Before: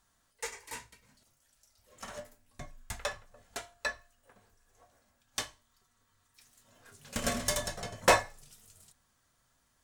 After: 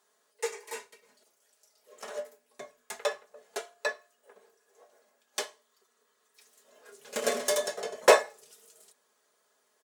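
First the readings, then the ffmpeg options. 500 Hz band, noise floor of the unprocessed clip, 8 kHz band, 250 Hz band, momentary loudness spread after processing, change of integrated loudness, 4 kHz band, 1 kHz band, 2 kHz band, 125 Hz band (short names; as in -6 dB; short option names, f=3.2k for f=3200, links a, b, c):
+7.5 dB, -74 dBFS, +1.0 dB, -2.5 dB, 24 LU, +3.5 dB, +1.5 dB, +1.5 dB, +1.5 dB, under -15 dB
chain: -af "highpass=f=440:t=q:w=3.4,aecho=1:1:4.8:0.52"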